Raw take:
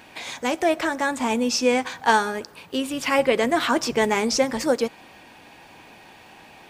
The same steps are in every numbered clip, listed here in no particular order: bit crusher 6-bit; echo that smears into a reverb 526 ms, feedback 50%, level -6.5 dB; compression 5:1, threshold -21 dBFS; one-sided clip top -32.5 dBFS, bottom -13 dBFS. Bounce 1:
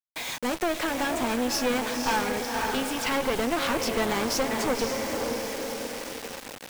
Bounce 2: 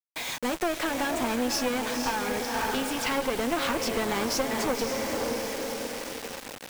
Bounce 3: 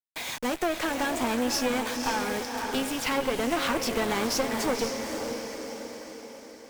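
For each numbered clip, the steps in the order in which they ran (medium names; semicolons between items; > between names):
echo that smears into a reverb > one-sided clip > compression > bit crusher; echo that smears into a reverb > compression > one-sided clip > bit crusher; bit crusher > compression > echo that smears into a reverb > one-sided clip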